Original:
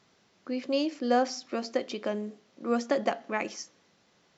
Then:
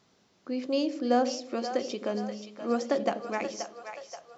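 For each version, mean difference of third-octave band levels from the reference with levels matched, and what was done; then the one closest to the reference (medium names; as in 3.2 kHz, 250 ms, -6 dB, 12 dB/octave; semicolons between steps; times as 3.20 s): 3.5 dB: peaking EQ 2 kHz -4 dB 1.3 oct; two-band feedback delay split 530 Hz, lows 86 ms, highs 529 ms, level -8.5 dB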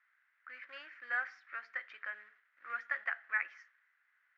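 11.5 dB: in parallel at -5 dB: companded quantiser 4-bit; on the sum: Butterworth band-pass 1.7 kHz, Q 2.7; trim +1 dB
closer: first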